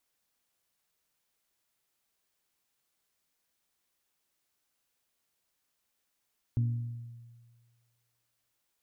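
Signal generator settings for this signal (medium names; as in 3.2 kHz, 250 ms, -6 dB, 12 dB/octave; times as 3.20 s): glass hit bell, length 2.05 s, lowest mode 118 Hz, decay 1.61 s, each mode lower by 11.5 dB, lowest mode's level -23.5 dB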